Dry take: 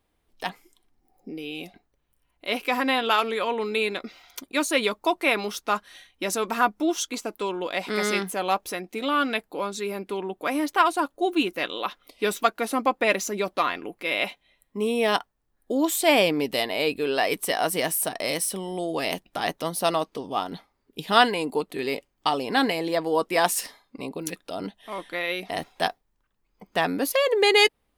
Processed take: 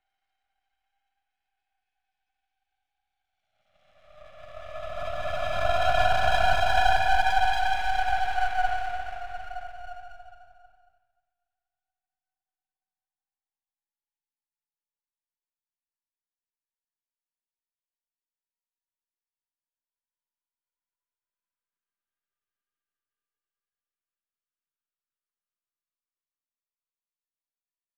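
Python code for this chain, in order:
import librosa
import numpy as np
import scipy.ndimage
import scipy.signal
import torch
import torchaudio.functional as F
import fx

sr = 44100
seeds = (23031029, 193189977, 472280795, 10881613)

p1 = fx.sine_speech(x, sr)
p2 = np.clip(p1, -10.0 ** (-22.5 / 20.0), 10.0 ** (-22.5 / 20.0))
p3 = p1 + F.gain(torch.from_numpy(p2), -9.5).numpy()
p4 = fx.paulstretch(p3, sr, seeds[0], factor=39.0, window_s=0.1, from_s=25.67)
p5 = np.maximum(p4, 0.0)
p6 = p5 + fx.echo_single(p5, sr, ms=228, db=-6.5, dry=0)
y = fx.band_widen(p6, sr, depth_pct=40)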